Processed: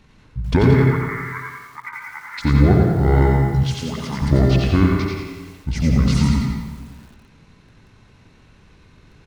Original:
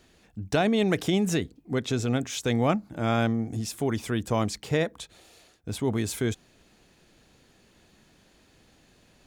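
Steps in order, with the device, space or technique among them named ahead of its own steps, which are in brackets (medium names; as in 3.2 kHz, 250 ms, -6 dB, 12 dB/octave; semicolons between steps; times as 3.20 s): 0.74–2.38 s: elliptic band-pass 1.6–3.6 kHz, stop band 40 dB; monster voice (pitch shift -9 st; bass shelf 240 Hz +7 dB; delay 91 ms -7 dB; reverberation RT60 1.4 s, pre-delay 65 ms, DRR 3.5 dB); 3.63–4.22 s: high-pass 530 Hz 6 dB/octave; delay 109 ms -7.5 dB; bit-crushed delay 86 ms, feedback 55%, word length 8-bit, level -7 dB; trim +4 dB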